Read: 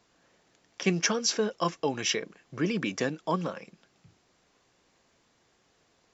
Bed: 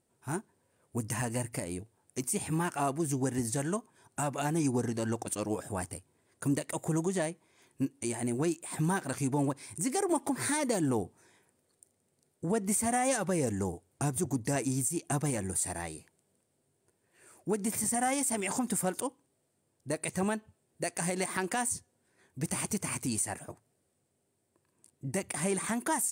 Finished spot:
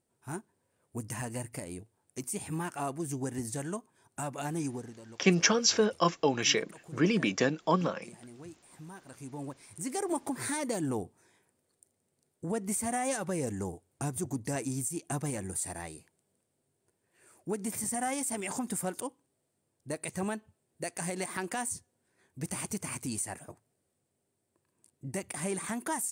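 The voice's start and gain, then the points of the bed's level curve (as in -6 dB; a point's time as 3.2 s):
4.40 s, +2.0 dB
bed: 4.62 s -4 dB
5.03 s -18 dB
8.9 s -18 dB
9.98 s -3 dB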